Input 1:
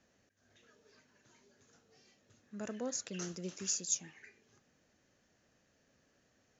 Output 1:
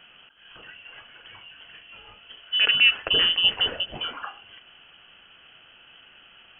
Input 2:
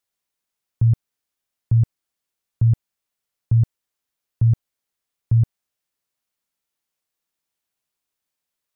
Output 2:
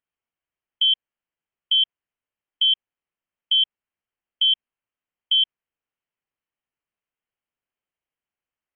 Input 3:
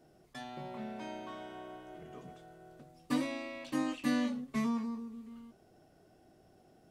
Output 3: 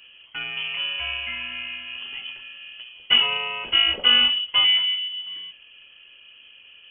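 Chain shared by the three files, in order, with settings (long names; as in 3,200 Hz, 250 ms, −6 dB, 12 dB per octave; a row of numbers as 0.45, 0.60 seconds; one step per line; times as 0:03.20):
voice inversion scrambler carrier 3,200 Hz
loudness normalisation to −20 LKFS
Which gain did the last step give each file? +21.5, −4.0, +14.0 decibels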